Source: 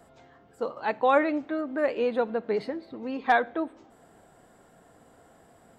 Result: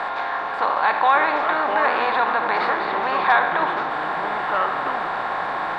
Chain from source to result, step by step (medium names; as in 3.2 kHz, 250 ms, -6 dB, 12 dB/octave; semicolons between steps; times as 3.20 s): spectral levelling over time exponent 0.4; treble shelf 2.6 kHz -12 dB; ever faster or slower copies 384 ms, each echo -4 st, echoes 3, each echo -6 dB; ten-band graphic EQ 125 Hz -8 dB, 250 Hz -11 dB, 500 Hz -9 dB, 1 kHz +10 dB, 2 kHz +5 dB, 4 kHz +11 dB; in parallel at +2.5 dB: peak limiter -15 dBFS, peak gain reduction 10.5 dB; on the sum: trim -4 dB